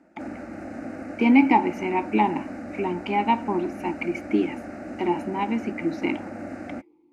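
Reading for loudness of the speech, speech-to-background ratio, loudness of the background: -24.5 LUFS, 12.0 dB, -36.5 LUFS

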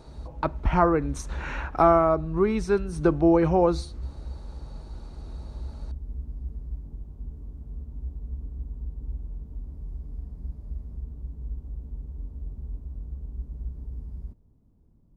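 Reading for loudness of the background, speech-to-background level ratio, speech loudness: -39.0 LUFS, 16.0 dB, -23.0 LUFS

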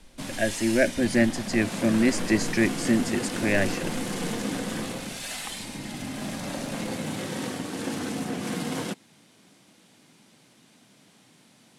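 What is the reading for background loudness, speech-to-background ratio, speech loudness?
-32.0 LUFS, 7.0 dB, -25.0 LUFS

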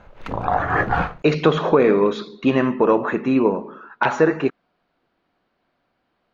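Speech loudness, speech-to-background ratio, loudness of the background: -19.5 LUFS, 3.0 dB, -22.5 LUFS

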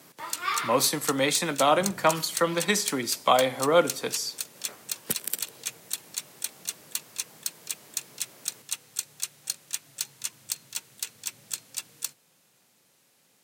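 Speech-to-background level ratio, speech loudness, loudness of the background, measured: 8.5 dB, -25.5 LUFS, -34.0 LUFS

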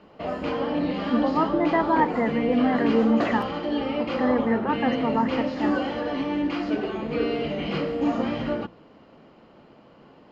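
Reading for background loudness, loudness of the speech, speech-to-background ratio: -27.0 LUFS, -25.0 LUFS, 2.0 dB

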